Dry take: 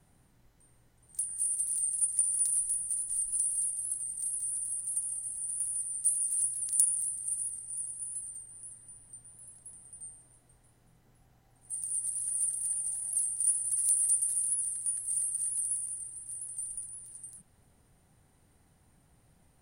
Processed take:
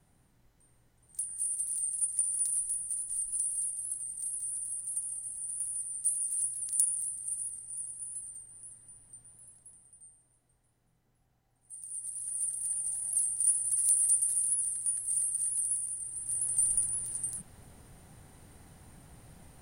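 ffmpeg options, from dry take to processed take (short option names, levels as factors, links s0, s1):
-af "volume=7.94,afade=t=out:st=9.29:d=0.73:silence=0.446684,afade=t=in:st=11.76:d=1.32:silence=0.316228,afade=t=in:st=16:d=0.65:silence=0.316228"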